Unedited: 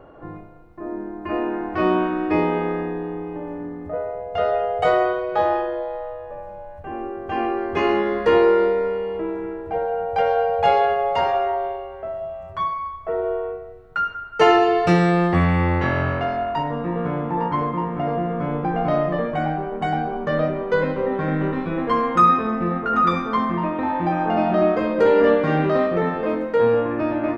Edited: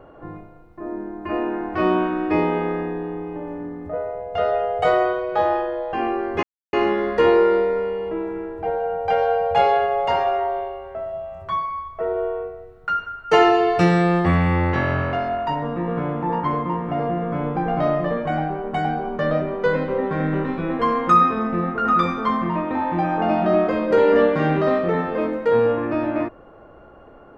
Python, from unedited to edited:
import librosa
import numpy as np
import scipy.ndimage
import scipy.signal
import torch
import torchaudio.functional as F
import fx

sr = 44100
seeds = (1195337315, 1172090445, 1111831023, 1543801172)

y = fx.edit(x, sr, fx.cut(start_s=5.93, length_s=1.38),
    fx.insert_silence(at_s=7.81, length_s=0.3), tone=tone)